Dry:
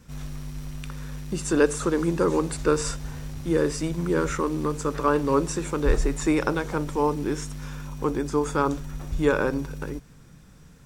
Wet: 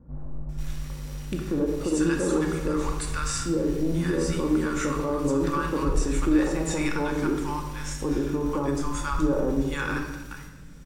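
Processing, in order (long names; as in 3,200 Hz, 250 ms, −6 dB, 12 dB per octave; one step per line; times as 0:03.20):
multiband delay without the direct sound lows, highs 490 ms, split 970 Hz
brickwall limiter −19 dBFS, peak gain reduction 10.5 dB
on a send at −2 dB: convolution reverb RT60 1.2 s, pre-delay 3 ms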